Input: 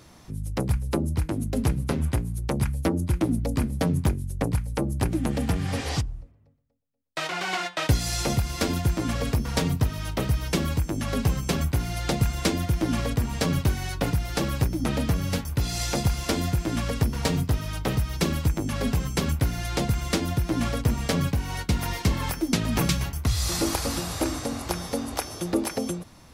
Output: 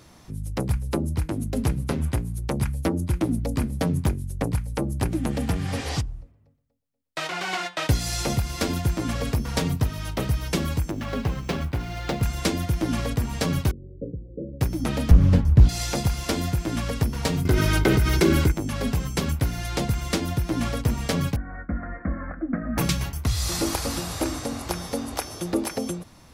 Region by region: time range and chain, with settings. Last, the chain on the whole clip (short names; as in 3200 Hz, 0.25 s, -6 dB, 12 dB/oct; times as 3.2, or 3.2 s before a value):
10.91–12.23 median filter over 5 samples + tone controls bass -3 dB, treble -4 dB
13.71–14.61 steep low-pass 550 Hz 96 dB/oct + low shelf 280 Hz -11.5 dB
15.11–15.69 tilt -3.5 dB/oct + Doppler distortion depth 0.5 ms
17.45–18.52 small resonant body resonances 360/1500/2100 Hz, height 14 dB + hard clip -12 dBFS + fast leveller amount 70%
21.36–22.78 steep low-pass 1900 Hz 48 dB/oct + fixed phaser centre 610 Hz, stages 8
whole clip: dry